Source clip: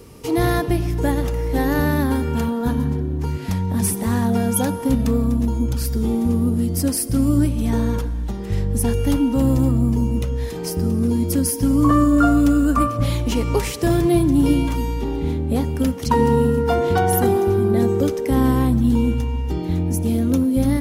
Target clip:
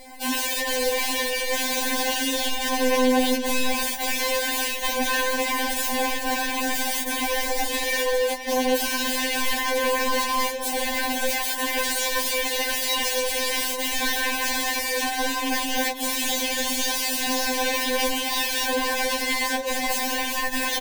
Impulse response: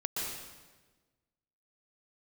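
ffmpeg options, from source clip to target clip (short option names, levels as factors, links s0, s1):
-filter_complex "[0:a]asplit=2[s0][s1];[s1]asoftclip=type=tanh:threshold=0.188,volume=0.398[s2];[s0][s2]amix=inputs=2:normalize=0,asetrate=76340,aresample=44100,atempo=0.577676,firequalizer=gain_entry='entry(130,0);entry(230,-10);entry(1100,-3);entry(2400,2)':delay=0.05:min_phase=1,acontrast=36,asplit=2[s3][s4];[s4]adelay=21,volume=0.266[s5];[s3][s5]amix=inputs=2:normalize=0,aeval=exprs='(mod(6.31*val(0)+1,2)-1)/6.31':c=same,asuperstop=centerf=1300:order=4:qfactor=5.4,highshelf=f=5500:g=-4.5,asplit=2[s6][s7];[s7]adelay=524.8,volume=0.316,highshelf=f=4000:g=-11.8[s8];[s6][s8]amix=inputs=2:normalize=0,afftfilt=real='re*3.46*eq(mod(b,12),0)':imag='im*3.46*eq(mod(b,12),0)':win_size=2048:overlap=0.75"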